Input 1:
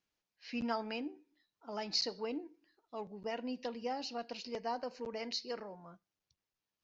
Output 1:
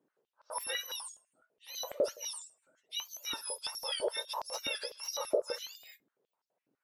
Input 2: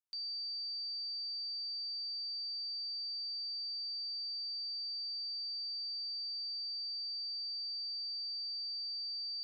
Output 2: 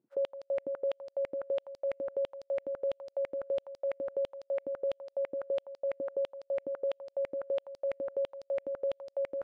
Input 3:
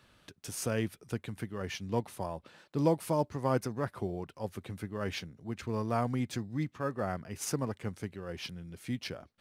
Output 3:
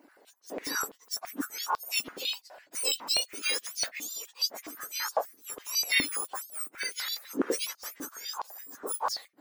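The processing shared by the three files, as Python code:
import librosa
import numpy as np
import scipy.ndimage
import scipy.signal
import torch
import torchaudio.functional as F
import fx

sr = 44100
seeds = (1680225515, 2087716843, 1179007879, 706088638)

y = fx.octave_mirror(x, sr, pivot_hz=1600.0)
y = fx.rider(y, sr, range_db=3, speed_s=2.0)
y = fx.filter_held_highpass(y, sr, hz=12.0, low_hz=290.0, high_hz=4800.0)
y = F.gain(torch.from_numpy(y), 4.0).numpy()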